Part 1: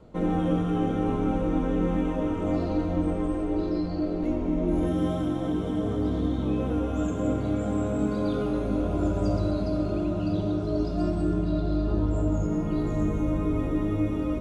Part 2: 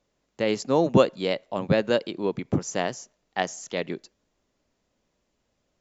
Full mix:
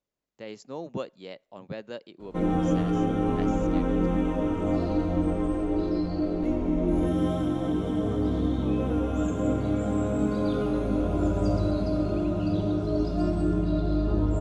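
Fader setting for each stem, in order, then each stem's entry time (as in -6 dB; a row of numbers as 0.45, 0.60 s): +0.5, -15.5 dB; 2.20, 0.00 s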